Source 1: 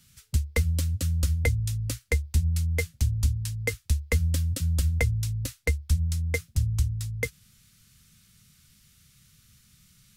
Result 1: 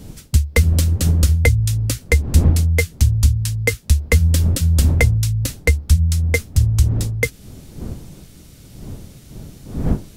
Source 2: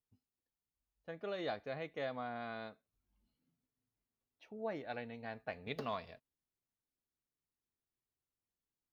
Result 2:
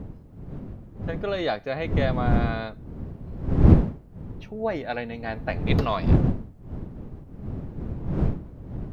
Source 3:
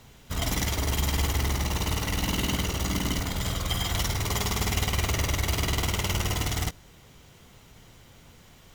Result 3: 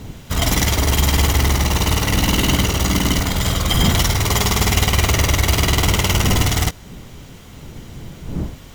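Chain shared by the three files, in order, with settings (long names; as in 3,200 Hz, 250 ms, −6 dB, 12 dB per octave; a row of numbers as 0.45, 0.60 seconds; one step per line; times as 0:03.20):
wind on the microphone 170 Hz −39 dBFS
normalise the peak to −2 dBFS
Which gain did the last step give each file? +10.5, +13.5, +10.5 decibels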